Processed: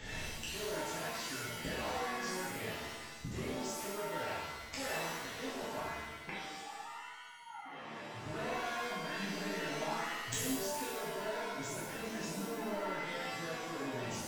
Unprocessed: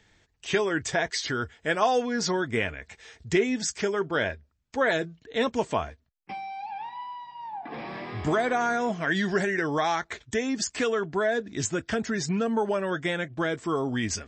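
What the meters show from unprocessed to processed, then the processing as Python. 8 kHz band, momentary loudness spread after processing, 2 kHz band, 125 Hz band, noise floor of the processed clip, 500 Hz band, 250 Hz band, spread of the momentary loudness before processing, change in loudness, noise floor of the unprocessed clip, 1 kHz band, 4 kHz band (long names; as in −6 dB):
−7.5 dB, 8 LU, −11.0 dB, −11.5 dB, −49 dBFS, −13.5 dB, −13.5 dB, 12 LU, −11.5 dB, −69 dBFS, −10.5 dB, −7.5 dB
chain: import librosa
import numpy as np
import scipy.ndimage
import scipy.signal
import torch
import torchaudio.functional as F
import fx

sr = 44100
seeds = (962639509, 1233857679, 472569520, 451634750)

y = np.clip(x, -10.0 ** (-25.5 / 20.0), 10.0 ** (-25.5 / 20.0))
y = fx.gate_flip(y, sr, shuts_db=-39.0, range_db=-31)
y = 10.0 ** (-36.0 / 20.0) * np.tanh(y / 10.0 ** (-36.0 / 20.0))
y = fx.rev_shimmer(y, sr, seeds[0], rt60_s=1.1, semitones=7, shimmer_db=-2, drr_db=-9.0)
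y = y * librosa.db_to_amplitude(9.5)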